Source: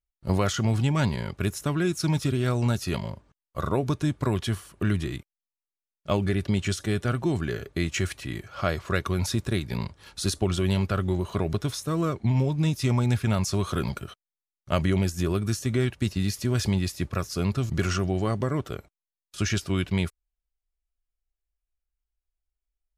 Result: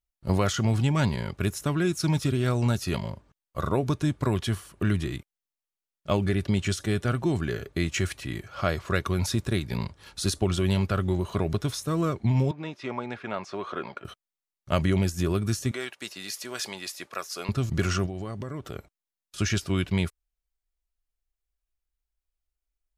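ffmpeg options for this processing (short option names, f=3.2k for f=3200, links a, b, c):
-filter_complex "[0:a]asettb=1/sr,asplit=3[a][b][c];[a]atrim=end=12.514[d];[b]atrim=start=12.51:end=14.05,asetpts=PTS-STARTPTS,afade=t=in:d=0.004:c=qsin,afade=t=out:st=1.536:d=0.004:c=qsin,highpass=410,lowpass=2.3k[e];[c]atrim=start=14.046[f];[d][e]acrossfade=d=0.004:c1=hsin:c2=qsin[g];[g][f]acrossfade=d=0.004:c1=qsin:c2=hsin,asettb=1/sr,asplit=3[h][i][j];[h]atrim=end=15.714[k];[i]atrim=start=15.71:end=17.49,asetpts=PTS-STARTPTS,afade=t=in:d=0.004:c=qsin,afade=t=out:st=1.776:d=0.004:c=qsin,highpass=600[l];[j]atrim=start=17.486[m];[k][l]acrossfade=d=0.004:c1=hsin:c2=qsin[n];[n][m]acrossfade=d=0.004:c1=qsin:c2=hsin,asettb=1/sr,asplit=3[o][p][q];[o]atrim=end=18.064[r];[p]atrim=start=18.06:end=18.75,asetpts=PTS-STARTPTS,afade=t=in:d=0.004:c=qsin,afade=t=out:st=0.686:d=0.004:c=qsin,acompressor=threshold=-31dB:ratio=6:attack=3.2:release=140:knee=1:detection=peak[s];[q]atrim=start=18.746[t];[r][s]acrossfade=d=0.004:c1=hsin:c2=qsin[u];[u][t]acrossfade=d=0.004:c1=qsin:c2=hsin"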